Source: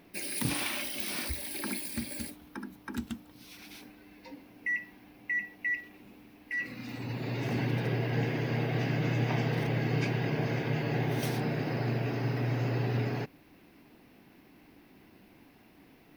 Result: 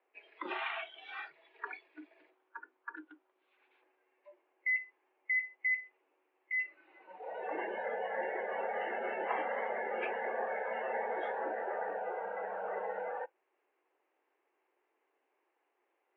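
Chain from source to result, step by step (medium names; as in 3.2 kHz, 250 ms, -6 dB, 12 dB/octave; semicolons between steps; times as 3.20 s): three-band isolator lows -16 dB, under 430 Hz, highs -15 dB, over 2.1 kHz; spectral noise reduction 18 dB; mistuned SSB +74 Hz 230–3400 Hz; trim +3.5 dB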